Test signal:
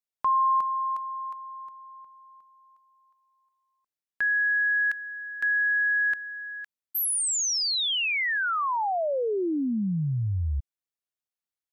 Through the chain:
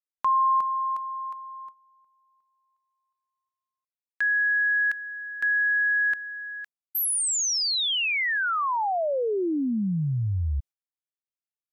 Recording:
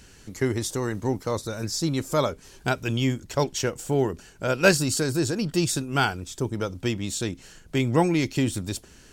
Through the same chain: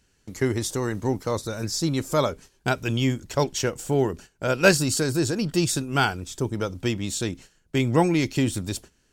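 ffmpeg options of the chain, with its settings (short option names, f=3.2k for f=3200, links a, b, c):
-af "agate=range=-16dB:threshold=-39dB:ratio=3:release=141:detection=rms,volume=1dB"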